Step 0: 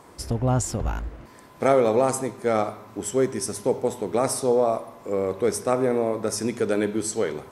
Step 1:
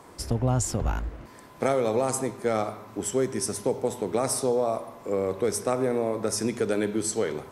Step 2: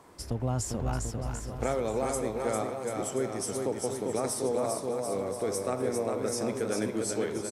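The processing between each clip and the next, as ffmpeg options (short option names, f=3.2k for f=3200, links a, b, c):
-filter_complex "[0:a]acrossover=split=120|3000[a][b][c];[b]acompressor=threshold=-22dB:ratio=3[d];[a][d][c]amix=inputs=3:normalize=0"
-af "aecho=1:1:400|740|1029|1275|1483:0.631|0.398|0.251|0.158|0.1,volume=-6dB"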